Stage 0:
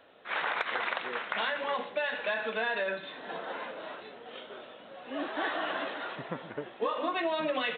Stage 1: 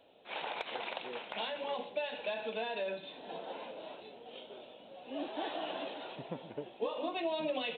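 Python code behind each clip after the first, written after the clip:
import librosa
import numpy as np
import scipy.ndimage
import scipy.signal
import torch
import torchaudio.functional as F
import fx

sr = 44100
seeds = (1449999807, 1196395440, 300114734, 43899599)

y = fx.band_shelf(x, sr, hz=1500.0, db=-12.0, octaves=1.1)
y = y * librosa.db_to_amplitude(-3.5)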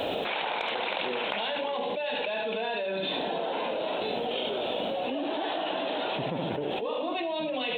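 y = x + 10.0 ** (-7.5 / 20.0) * np.pad(x, (int(73 * sr / 1000.0), 0))[:len(x)]
y = fx.env_flatten(y, sr, amount_pct=100)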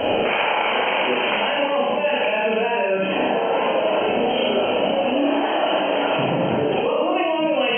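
y = fx.brickwall_lowpass(x, sr, high_hz=3200.0)
y = fx.rev_schroeder(y, sr, rt60_s=0.64, comb_ms=28, drr_db=-1.0)
y = y * librosa.db_to_amplitude(7.5)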